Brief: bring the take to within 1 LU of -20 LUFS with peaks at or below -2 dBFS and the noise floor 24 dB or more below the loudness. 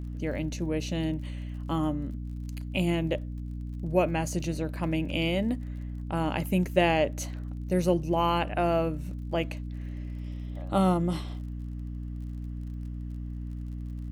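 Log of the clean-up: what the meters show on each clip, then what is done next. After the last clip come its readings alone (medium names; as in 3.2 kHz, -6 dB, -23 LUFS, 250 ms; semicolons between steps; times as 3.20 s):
tick rate 38 per s; hum 60 Hz; highest harmonic 300 Hz; hum level -33 dBFS; loudness -30.5 LUFS; peak level -10.0 dBFS; loudness target -20.0 LUFS
-> de-click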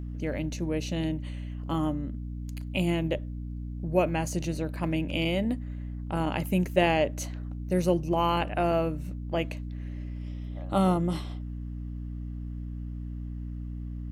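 tick rate 0.50 per s; hum 60 Hz; highest harmonic 300 Hz; hum level -33 dBFS
-> hum notches 60/120/180/240/300 Hz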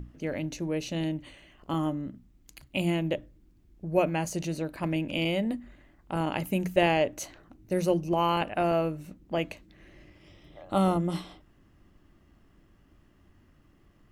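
hum not found; loudness -29.5 LUFS; peak level -10.5 dBFS; loudness target -20.0 LUFS
-> trim +9.5 dB; peak limiter -2 dBFS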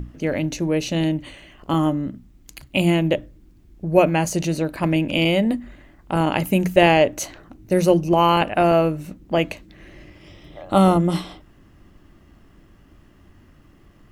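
loudness -20.0 LUFS; peak level -2.0 dBFS; noise floor -52 dBFS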